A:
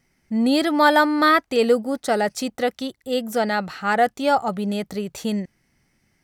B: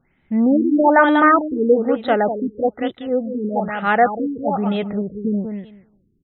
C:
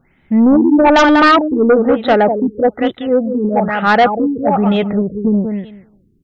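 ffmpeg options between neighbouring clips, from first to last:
-af "aecho=1:1:193|386|579:0.422|0.0675|0.0108,afftfilt=real='re*lt(b*sr/1024,450*pow(4100/450,0.5+0.5*sin(2*PI*1.1*pts/sr)))':imag='im*lt(b*sr/1024,450*pow(4100/450,0.5+0.5*sin(2*PI*1.1*pts/sr)))':win_size=1024:overlap=0.75,volume=3.5dB"
-af "aeval=exprs='0.891*(cos(1*acos(clip(val(0)/0.891,-1,1)))-cos(1*PI/2))+0.316*(cos(5*acos(clip(val(0)/0.891,-1,1)))-cos(5*PI/2))':c=same,volume=-1dB"

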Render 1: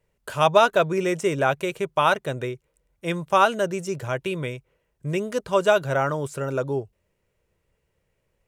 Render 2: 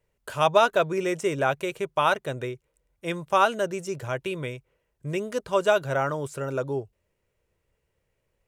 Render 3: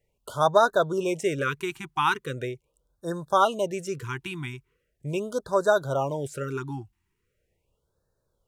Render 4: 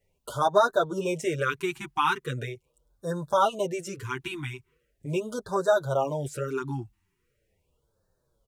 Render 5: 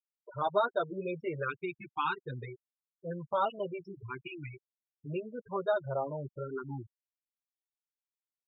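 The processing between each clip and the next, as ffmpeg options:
-af "equalizer=f=180:w=3:g=-3.5,volume=-2.5dB"
-af "afftfilt=real='re*(1-between(b*sr/1024,510*pow(2600/510,0.5+0.5*sin(2*PI*0.4*pts/sr))/1.41,510*pow(2600/510,0.5+0.5*sin(2*PI*0.4*pts/sr))*1.41))':imag='im*(1-between(b*sr/1024,510*pow(2600/510,0.5+0.5*sin(2*PI*0.4*pts/sr))/1.41,510*pow(2600/510,0.5+0.5*sin(2*PI*0.4*pts/sr))*1.41))':win_size=1024:overlap=0.75"
-filter_complex "[0:a]asplit=2[a][b];[b]acompressor=threshold=-33dB:ratio=6,volume=-2.5dB[c];[a][c]amix=inputs=2:normalize=0,asplit=2[d][e];[e]adelay=7.1,afreqshift=-2[f];[d][f]amix=inputs=2:normalize=1"
-af "afftfilt=real='re*gte(hypot(re,im),0.0447)':imag='im*gte(hypot(re,im),0.0447)':win_size=1024:overlap=0.75,aresample=11025,aresample=44100,volume=-7.5dB"

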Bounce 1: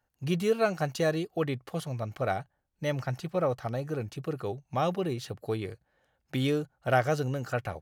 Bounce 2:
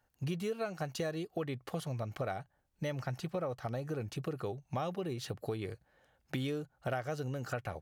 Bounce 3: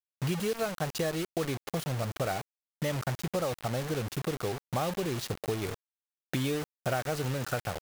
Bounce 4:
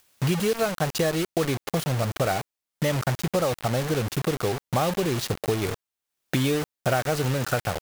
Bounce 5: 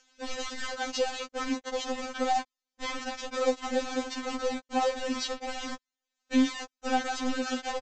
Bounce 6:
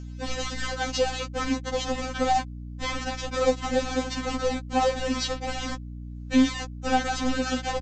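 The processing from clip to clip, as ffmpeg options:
-af "acompressor=threshold=-37dB:ratio=5,volume=2.5dB"
-af "acrusher=bits=6:mix=0:aa=0.000001,volume=5dB"
-af "acompressor=mode=upward:threshold=-48dB:ratio=2.5,volume=7dB"
-af "aresample=16000,asoftclip=type=tanh:threshold=-26dB,aresample=44100,afftfilt=real='re*3.46*eq(mod(b,12),0)':imag='im*3.46*eq(mod(b,12),0)':win_size=2048:overlap=0.75,volume=3.5dB"
-af "aeval=exprs='val(0)+0.01*(sin(2*PI*60*n/s)+sin(2*PI*2*60*n/s)/2+sin(2*PI*3*60*n/s)/3+sin(2*PI*4*60*n/s)/4+sin(2*PI*5*60*n/s)/5)':c=same,volume=4dB"

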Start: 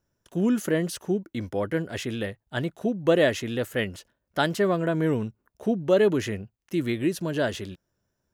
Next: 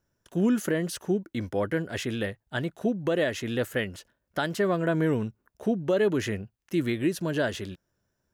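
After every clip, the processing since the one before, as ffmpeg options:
-af "alimiter=limit=-16dB:level=0:latency=1:release=247,equalizer=f=1.6k:w=2.8:g=2.5"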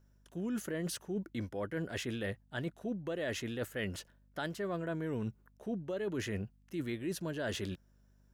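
-af "areverse,acompressor=threshold=-34dB:ratio=10,areverse,aeval=exprs='val(0)+0.000562*(sin(2*PI*50*n/s)+sin(2*PI*2*50*n/s)/2+sin(2*PI*3*50*n/s)/3+sin(2*PI*4*50*n/s)/4+sin(2*PI*5*50*n/s)/5)':c=same"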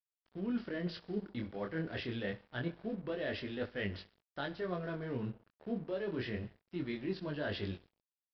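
-af "aecho=1:1:65|130|195|260|325|390:0.141|0.0833|0.0492|0.029|0.0171|0.0101,flanger=delay=20:depth=5.3:speed=0.26,aresample=11025,aeval=exprs='sgn(val(0))*max(abs(val(0))-0.00119,0)':c=same,aresample=44100,volume=2.5dB"

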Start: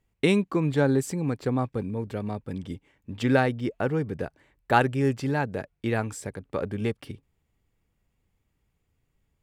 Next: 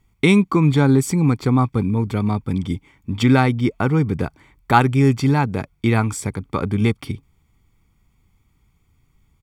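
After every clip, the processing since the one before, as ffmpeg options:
-filter_complex "[0:a]aecho=1:1:0.9:0.61,asplit=2[a][b];[b]alimiter=limit=-18.5dB:level=0:latency=1:release=270,volume=-0.5dB[c];[a][c]amix=inputs=2:normalize=0,volume=3.5dB"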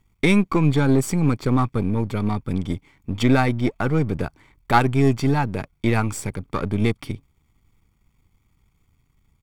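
-af "aeval=exprs='if(lt(val(0),0),0.447*val(0),val(0))':c=same"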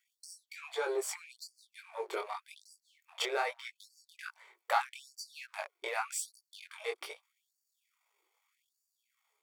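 -af "acompressor=threshold=-21dB:ratio=6,flanger=delay=17:depth=7.1:speed=1.1,afftfilt=real='re*gte(b*sr/1024,330*pow(4500/330,0.5+0.5*sin(2*PI*0.82*pts/sr)))':imag='im*gte(b*sr/1024,330*pow(4500/330,0.5+0.5*sin(2*PI*0.82*pts/sr)))':win_size=1024:overlap=0.75"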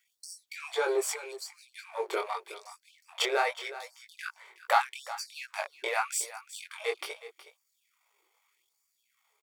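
-af "aecho=1:1:368:0.178,volume=5.5dB"

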